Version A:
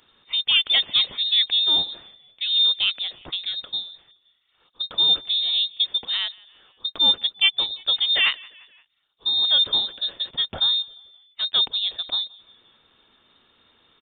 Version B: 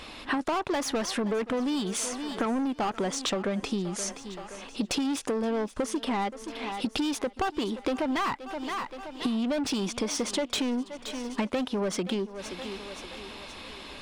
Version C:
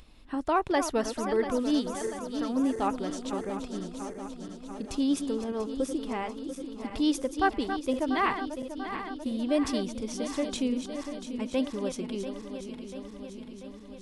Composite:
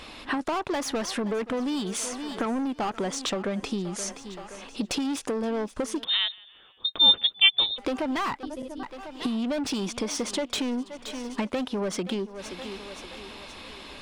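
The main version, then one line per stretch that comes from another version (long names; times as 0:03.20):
B
0:06.04–0:07.78: punch in from A
0:08.43–0:08.83: punch in from C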